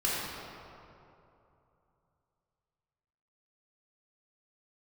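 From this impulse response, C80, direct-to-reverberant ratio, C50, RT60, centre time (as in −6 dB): −1.0 dB, −7.0 dB, −3.0 dB, 2.9 s, 158 ms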